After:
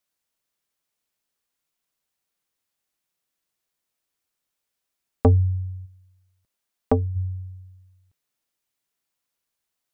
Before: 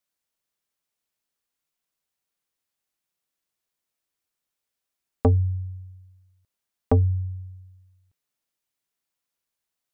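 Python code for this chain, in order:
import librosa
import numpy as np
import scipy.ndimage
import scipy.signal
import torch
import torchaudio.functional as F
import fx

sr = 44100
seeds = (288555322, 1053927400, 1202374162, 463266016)

y = fx.peak_eq(x, sr, hz=89.0, db=-8.0, octaves=1.2, at=(5.85, 7.15), fade=0.02)
y = y * 10.0 ** (2.5 / 20.0)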